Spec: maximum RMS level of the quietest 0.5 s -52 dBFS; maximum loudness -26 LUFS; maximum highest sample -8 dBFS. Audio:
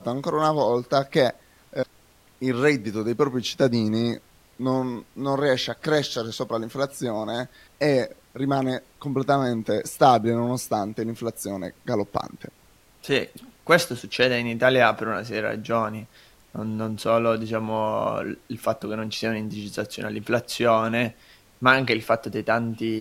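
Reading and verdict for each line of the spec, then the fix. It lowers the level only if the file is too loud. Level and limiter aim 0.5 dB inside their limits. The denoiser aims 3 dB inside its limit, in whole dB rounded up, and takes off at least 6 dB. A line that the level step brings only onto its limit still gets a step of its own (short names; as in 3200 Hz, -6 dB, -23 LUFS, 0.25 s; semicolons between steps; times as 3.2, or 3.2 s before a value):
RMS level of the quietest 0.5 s -56 dBFS: OK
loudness -24.5 LUFS: fail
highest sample -3.5 dBFS: fail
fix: gain -2 dB; limiter -8.5 dBFS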